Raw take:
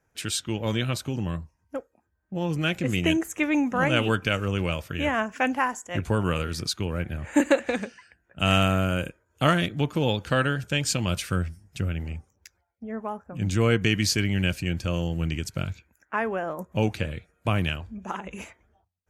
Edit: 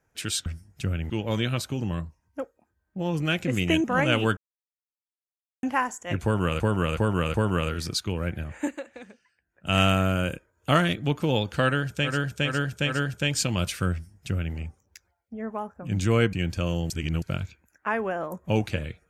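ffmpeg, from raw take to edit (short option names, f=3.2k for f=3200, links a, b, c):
-filter_complex "[0:a]asplit=17[a][b][c][d][e][f][g][h][i][j][k][l][m][n][o][p][q];[a]atrim=end=0.462[r];[b]atrim=start=11.418:end=12.062[s];[c]atrim=start=0.458:end=3.202[t];[d]atrim=start=3.678:end=4.21,asetpts=PTS-STARTPTS,afade=t=out:st=0.528:d=0.004:c=hsin[u];[e]atrim=start=4.21:end=5.47,asetpts=PTS-STARTPTS,volume=0[v];[f]atrim=start=5.47:end=6.442,asetpts=PTS-STARTPTS,afade=t=in:d=0.004:c=hsin[w];[g]atrim=start=6.068:end=6.442[x];[h]atrim=start=6.068:end=6.442[y];[i]atrim=start=6.068:end=7.49,asetpts=PTS-STARTPTS,afade=t=out:st=1.042:d=0.38:silence=0.149624[z];[j]atrim=start=7.49:end=8.13,asetpts=PTS-STARTPTS,volume=-16.5dB[aa];[k]atrim=start=8.13:end=10.91,asetpts=PTS-STARTPTS,afade=t=in:d=0.38:silence=0.149624[ab];[l]atrim=start=10.34:end=10.91[ac];[m]atrim=start=10.34:end=10.91[ad];[n]atrim=start=10.34:end=13.832[ae];[o]atrim=start=14.598:end=15.172[af];[p]atrim=start=15.168:end=15.492,asetpts=PTS-STARTPTS,areverse[ag];[q]atrim=start=15.488[ah];[r][s]acrossfade=d=0.004:c1=hsin:c2=hsin[ai];[ai][t]acrossfade=d=0.004:c1=hsin:c2=hsin[aj];[u][v][w]concat=n=3:v=0:a=1[ak];[aj][ak]acrossfade=d=0.004:c1=hsin:c2=hsin[al];[al][x]acrossfade=d=0.004:c1=hsin:c2=hsin[am];[am][y]acrossfade=d=0.004:c1=hsin:c2=hsin[an];[z][aa][ab]concat=n=3:v=0:a=1[ao];[an][ao]acrossfade=d=0.004:c1=hsin:c2=hsin[ap];[ap][ac]acrossfade=d=0.16:c1=tri:c2=tri[aq];[aq][ad]acrossfade=d=0.16:c1=tri:c2=tri[ar];[ar][ae]acrossfade=d=0.16:c1=tri:c2=tri[as];[as][af]acrossfade=d=0.004:c1=hsin:c2=hsin[at];[at][ag]acrossfade=d=0.004:c1=hsin:c2=hsin[au];[au][ah]acrossfade=d=0.004:c1=hsin:c2=hsin"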